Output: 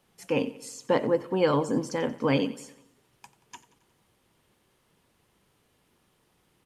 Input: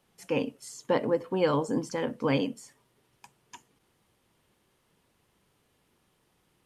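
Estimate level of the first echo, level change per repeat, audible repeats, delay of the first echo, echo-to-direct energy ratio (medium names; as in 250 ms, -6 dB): -18.0 dB, -5.0 dB, 4, 90 ms, -16.5 dB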